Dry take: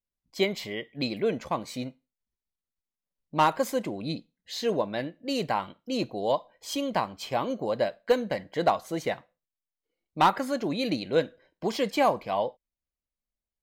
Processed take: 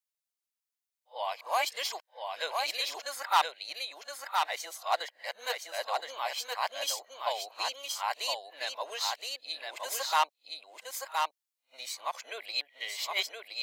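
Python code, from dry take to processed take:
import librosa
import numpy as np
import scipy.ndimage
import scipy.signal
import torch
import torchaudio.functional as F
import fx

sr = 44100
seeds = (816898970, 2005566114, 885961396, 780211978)

p1 = x[::-1].copy()
p2 = scipy.signal.sosfilt(scipy.signal.butter(4, 710.0, 'highpass', fs=sr, output='sos'), p1)
p3 = fx.high_shelf(p2, sr, hz=2600.0, db=10.0)
p4 = p3 + fx.echo_single(p3, sr, ms=1019, db=-4.0, dry=0)
y = p4 * librosa.db_to_amplitude(-4.5)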